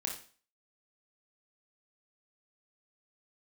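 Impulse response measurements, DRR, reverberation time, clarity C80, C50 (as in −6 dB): 0.0 dB, 0.40 s, 12.0 dB, 6.5 dB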